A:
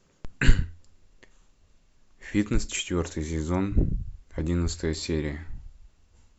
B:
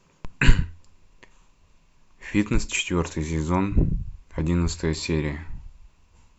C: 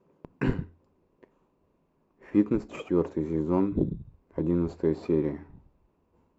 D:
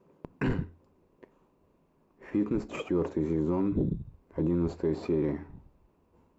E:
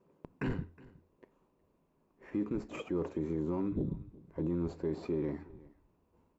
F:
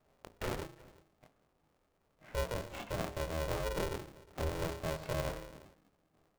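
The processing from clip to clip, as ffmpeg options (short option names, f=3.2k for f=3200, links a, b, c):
-af "equalizer=f=160:t=o:w=0.33:g=5,equalizer=f=1k:t=o:w=0.33:g=10,equalizer=f=2.5k:t=o:w=0.33:g=7,volume=2dB"
-filter_complex "[0:a]asplit=2[a][b];[b]acrusher=samples=12:mix=1:aa=0.000001,volume=-8dB[c];[a][c]amix=inputs=2:normalize=0,bandpass=f=380:t=q:w=1.3:csg=0"
-af "alimiter=limit=-22dB:level=0:latency=1:release=12,volume=2.5dB"
-af "aecho=1:1:365:0.0794,volume=-6dB"
-af "bandreject=f=56.8:t=h:w=4,bandreject=f=113.6:t=h:w=4,bandreject=f=170.4:t=h:w=4,bandreject=f=227.2:t=h:w=4,bandreject=f=284:t=h:w=4,bandreject=f=340.8:t=h:w=4,bandreject=f=397.6:t=h:w=4,bandreject=f=454.4:t=h:w=4,bandreject=f=511.2:t=h:w=4,bandreject=f=568:t=h:w=4,bandreject=f=624.8:t=h:w=4,bandreject=f=681.6:t=h:w=4,bandreject=f=738.4:t=h:w=4,bandreject=f=795.2:t=h:w=4,bandreject=f=852:t=h:w=4,bandreject=f=908.8:t=h:w=4,bandreject=f=965.6:t=h:w=4,bandreject=f=1.0224k:t=h:w=4,bandreject=f=1.0792k:t=h:w=4,bandreject=f=1.136k:t=h:w=4,bandreject=f=1.1928k:t=h:w=4,bandreject=f=1.2496k:t=h:w=4,bandreject=f=1.3064k:t=h:w=4,bandreject=f=1.3632k:t=h:w=4,bandreject=f=1.42k:t=h:w=4,bandreject=f=1.4768k:t=h:w=4,bandreject=f=1.5336k:t=h:w=4,flanger=delay=22.5:depth=3.9:speed=0.6,aeval=exprs='val(0)*sgn(sin(2*PI*240*n/s))':c=same,volume=1dB"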